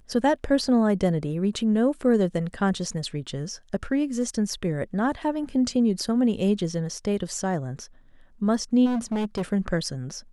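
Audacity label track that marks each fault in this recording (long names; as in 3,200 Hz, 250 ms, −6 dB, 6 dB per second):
8.850000	9.430000	clipping −23 dBFS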